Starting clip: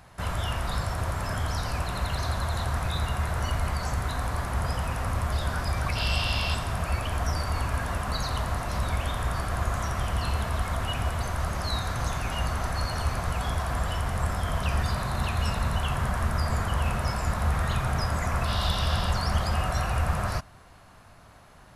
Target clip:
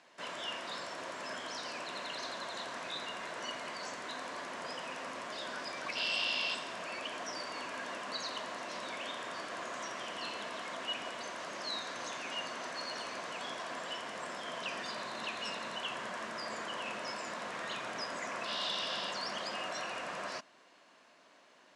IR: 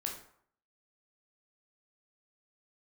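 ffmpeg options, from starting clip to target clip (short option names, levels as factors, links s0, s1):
-af "highpass=f=280:w=0.5412,highpass=f=280:w=1.3066,equalizer=f=410:t=q:w=4:g=-3,equalizer=f=790:t=q:w=4:g=-8,equalizer=f=1300:t=q:w=4:g=-7,equalizer=f=2900:t=q:w=4:g=3,lowpass=f=7500:w=0.5412,lowpass=f=7500:w=1.3066,volume=0.596"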